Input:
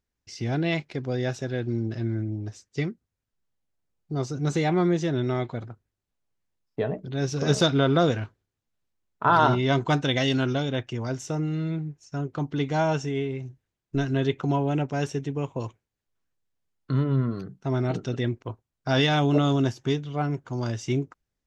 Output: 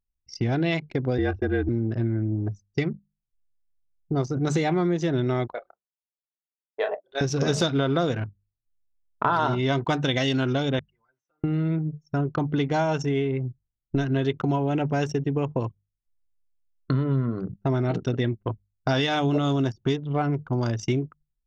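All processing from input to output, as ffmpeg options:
-filter_complex "[0:a]asettb=1/sr,asplit=3[s0][s1][s2];[s0]atrim=end=1.184[s3];[s1]atrim=start=1.18:end=1.69,asetpts=PTS-STARTPTS,afade=t=in:d=0.004:c=qsin,afade=t=out:st=0.506:d=0.004:c=qsin,lowpass=2500,aecho=1:1:2.5:0.91,atrim=end_sample=22491,afreqshift=-37[s4];[s2]atrim=start=1.686[s5];[s3][s4]acrossfade=d=0.004:c1=hsin:c2=qsin[s6];[s6][s5]acrossfade=d=0.004:c1=qsin:c2=hsin,asettb=1/sr,asplit=3[s7][s8][s9];[s7]atrim=end=5.524[s10];[s8]atrim=start=5.52:end=7.21,asetpts=PTS-STARTPTS,afade=t=in:d=0.004:c=qsin,afade=t=out:st=1.686:d=0.004:c=qsin,highpass=f=550:w=0.5412,highpass=f=550:w=1.3066,asplit=2[s11][s12];[s12]adelay=29,volume=0.562[s13];[s11][s13]amix=inputs=2:normalize=0,atrim=end_sample=74529[s14];[s9]atrim=start=7.206[s15];[s10][s14]acrossfade=d=0.004:c1=hsin:c2=qsin[s16];[s16][s15]acrossfade=d=0.004:c1=qsin:c2=hsin,asettb=1/sr,asplit=3[s17][s18][s19];[s17]atrim=end=10.794[s20];[s18]atrim=start=10.79:end=11.44,asetpts=PTS-STARTPTS,afade=t=in:d=0.004:c=qsin,afade=t=out:st=0.646:d=0.004:c=qsin,highpass=1300,acompressor=threshold=0.00316:ratio=3:attack=3.2:release=140:knee=1:detection=peak,highshelf=f=3400:g=-11.5[s21];[s19]atrim=start=11.436[s22];[s20][s21]acrossfade=d=0.004:c1=hsin:c2=qsin[s23];[s23][s22]acrossfade=d=0.004:c1=qsin:c2=hsin,bandreject=f=50:t=h:w=6,bandreject=f=100:t=h:w=6,bandreject=f=150:t=h:w=6,bandreject=f=200:t=h:w=6,anlmdn=1.58,acompressor=threshold=0.0282:ratio=4,volume=2.82"

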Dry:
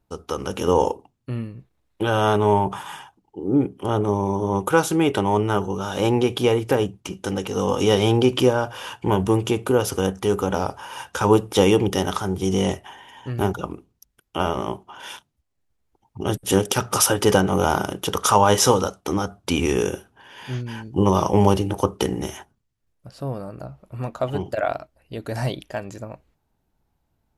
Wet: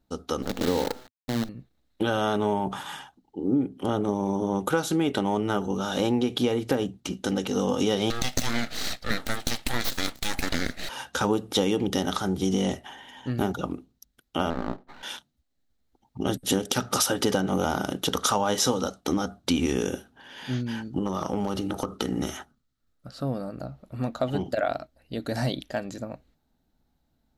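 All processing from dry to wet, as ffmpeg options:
-filter_complex "[0:a]asettb=1/sr,asplit=3[s0][s1][s2];[s0]atrim=end=0.424[s3];[s1]atrim=start=0.42:end=1.49,asetpts=PTS-STARTPTS,afade=t=in:d=0.004:c=qsin,afade=t=out:st=1.066:d=0.004:c=qsin,lowpass=f=1000:p=1,bandreject=f=125.4:t=h:w=4,bandreject=f=250.8:t=h:w=4,bandreject=f=376.2:t=h:w=4,bandreject=f=501.6:t=h:w=4,bandreject=f=627:t=h:w=4,bandreject=f=752.4:t=h:w=4,bandreject=f=877.8:t=h:w=4,acrusher=bits=5:dc=4:mix=0:aa=0.000001[s4];[s2]atrim=start=1.486[s5];[s3][s4]acrossfade=d=0.004:c1=hsin:c2=qsin[s6];[s6][s5]acrossfade=d=0.004:c1=qsin:c2=hsin,asettb=1/sr,asplit=3[s7][s8][s9];[s7]atrim=end=8.104[s10];[s8]atrim=start=8.1:end=10.89,asetpts=PTS-STARTPTS,afade=t=in:d=0.004:c=qsin,afade=t=out:st=2.786:d=0.004:c=qsin,highpass=880,acontrast=84,aeval=exprs='abs(val(0))':c=same[s11];[s9]atrim=start=10.886[s12];[s10][s11]acrossfade=d=0.004:c1=hsin:c2=qsin[s13];[s13][s12]acrossfade=d=0.004:c1=qsin:c2=hsin,asettb=1/sr,asplit=3[s14][s15][s16];[s14]atrim=end=14.504[s17];[s15]atrim=start=14.5:end=15.03,asetpts=PTS-STARTPTS,afade=t=in:d=0.004:c=qsin,afade=t=out:st=0.526:d=0.004:c=qsin,lowpass=1600,aeval=exprs='max(val(0),0)':c=same[s18];[s16]atrim=start=15.026[s19];[s17][s18]acrossfade=d=0.004:c1=hsin:c2=qsin[s20];[s20][s19]acrossfade=d=0.004:c1=qsin:c2=hsin,asettb=1/sr,asplit=3[s21][s22][s23];[s21]atrim=end=20.844[s24];[s22]atrim=start=20.84:end=23.25,asetpts=PTS-STARTPTS,afade=t=in:d=0.004:c=qsin,afade=t=out:st=2.406:d=0.004:c=qsin,equalizer=f=1300:t=o:w=0.25:g=11.5,asoftclip=type=hard:threshold=0.631,acompressor=threshold=0.0794:ratio=6:attack=3.2:release=140:knee=1:detection=peak[s25];[s23]atrim=start=23.246[s26];[s24][s25]acrossfade=d=0.004:c1=hsin:c2=qsin[s27];[s27][s26]acrossfade=d=0.004:c1=qsin:c2=hsin,equalizer=f=100:t=o:w=0.33:g=-11,equalizer=f=250:t=o:w=0.33:g=7,equalizer=f=400:t=o:w=0.33:g=-4,equalizer=f=1000:t=o:w=0.33:g=-7,equalizer=f=2500:t=o:w=0.33:g=-4,equalizer=f=4000:t=o:w=0.33:g=7,equalizer=f=10000:t=o:w=0.33:g=-5,acompressor=threshold=0.0891:ratio=4"

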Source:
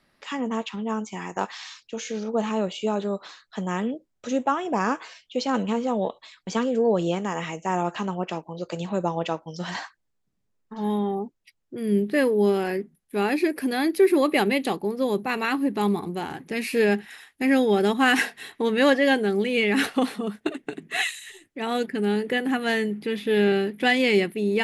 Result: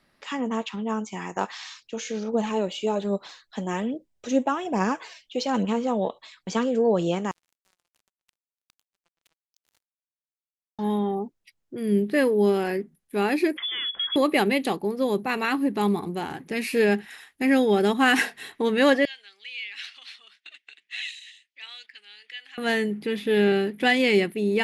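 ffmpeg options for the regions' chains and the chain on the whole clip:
-filter_complex "[0:a]asettb=1/sr,asplit=3[s0][s1][s2];[s0]atrim=end=2.324[s3];[s1]atrim=start=2.32:end=5.65,asetpts=PTS-STARTPTS,afade=t=in:d=0.004:c=qsin,afade=t=out:st=3.326:d=0.004:c=qsin,equalizer=f=1300:w=2.7:g=-6,aphaser=in_gain=1:out_gain=1:delay=3.9:decay=0.37:speed=1.2:type=triangular[s4];[s2]atrim=start=5.646[s5];[s3][s4]acrossfade=d=0.004:c1=hsin:c2=qsin[s6];[s6][s5]acrossfade=d=0.004:c1=qsin:c2=hsin,asettb=1/sr,asplit=3[s7][s8][s9];[s7]atrim=end=7.314[s10];[s8]atrim=start=7.31:end=10.79,asetpts=PTS-STARTPTS,afade=t=in:d=0.004:c=qsin,afade=t=out:st=3.476:d=0.004:c=qsin,aderivative,acompressor=threshold=0.00178:ratio=3:attack=3.2:release=140:knee=1:detection=peak,acrusher=bits=6:mix=0:aa=0.5[s11];[s9]atrim=start=10.786[s12];[s10][s11]acrossfade=d=0.004:c1=hsin:c2=qsin[s13];[s13][s12]acrossfade=d=0.004:c1=qsin:c2=hsin,asettb=1/sr,asplit=3[s14][s15][s16];[s14]atrim=end=13.574[s17];[s15]atrim=start=13.57:end=14.16,asetpts=PTS-STARTPTS,afade=t=in:d=0.004:c=qsin,afade=t=out:st=0.586:d=0.004:c=qsin,acompressor=threshold=0.0447:ratio=4:attack=3.2:release=140:knee=1:detection=peak,lowpass=f=3100:t=q:w=0.5098,lowpass=f=3100:t=q:w=0.6013,lowpass=f=3100:t=q:w=0.9,lowpass=f=3100:t=q:w=2.563,afreqshift=-3700[s18];[s16]atrim=start=14.156[s19];[s17][s18]acrossfade=d=0.004:c1=hsin:c2=qsin[s20];[s20][s19]acrossfade=d=0.004:c1=qsin:c2=hsin,asettb=1/sr,asplit=3[s21][s22][s23];[s21]atrim=end=19.054[s24];[s22]atrim=start=19.05:end=22.58,asetpts=PTS-STARTPTS,afade=t=in:d=0.004:c=qsin,afade=t=out:st=3.526:d=0.004:c=qsin,acompressor=threshold=0.0562:ratio=4:attack=3.2:release=140:knee=1:detection=peak,asuperpass=centerf=3600:order=4:qfactor=1.1[s25];[s23]atrim=start=22.576[s26];[s24][s25]acrossfade=d=0.004:c1=hsin:c2=qsin[s27];[s27][s26]acrossfade=d=0.004:c1=qsin:c2=hsin"

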